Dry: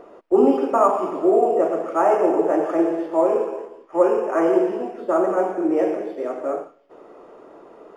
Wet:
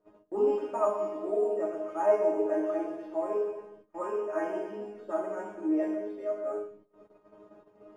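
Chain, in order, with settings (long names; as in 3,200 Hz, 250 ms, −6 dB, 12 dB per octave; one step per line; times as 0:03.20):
noise in a band 68–500 Hz −48 dBFS
resonators tuned to a chord G#3 fifth, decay 0.31 s
noise gate −58 dBFS, range −18 dB
on a send: bucket-brigade delay 82 ms, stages 1,024, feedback 39%, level −20.5 dB
on the sum: level +4 dB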